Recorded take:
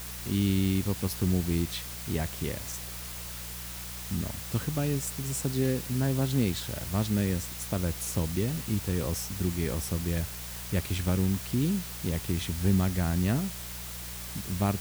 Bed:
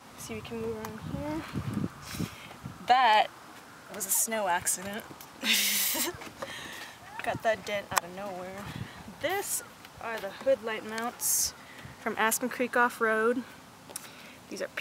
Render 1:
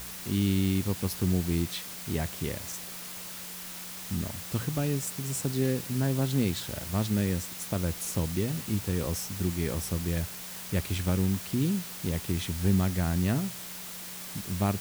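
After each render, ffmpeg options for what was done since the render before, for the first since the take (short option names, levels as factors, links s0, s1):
-af "bandreject=f=60:t=h:w=4,bandreject=f=120:t=h:w=4"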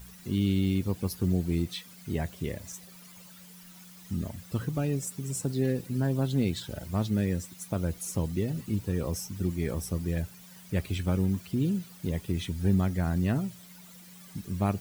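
-af "afftdn=nr=14:nf=-41"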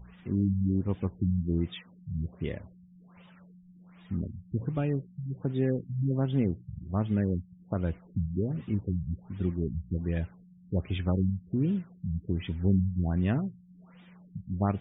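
-af "afftfilt=real='re*lt(b*sr/1024,200*pow(3800/200,0.5+0.5*sin(2*PI*1.3*pts/sr)))':imag='im*lt(b*sr/1024,200*pow(3800/200,0.5+0.5*sin(2*PI*1.3*pts/sr)))':win_size=1024:overlap=0.75"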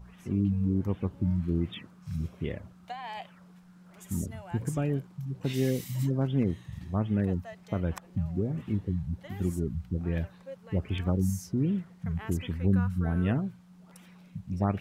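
-filter_complex "[1:a]volume=0.133[s0];[0:a][s0]amix=inputs=2:normalize=0"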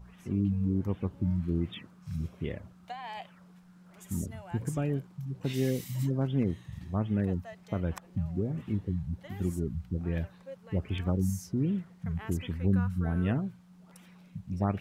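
-af "volume=0.841"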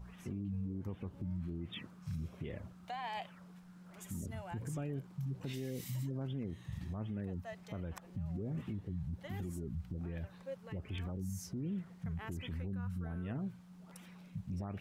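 -af "acompressor=threshold=0.0224:ratio=6,alimiter=level_in=2.82:limit=0.0631:level=0:latency=1:release=12,volume=0.355"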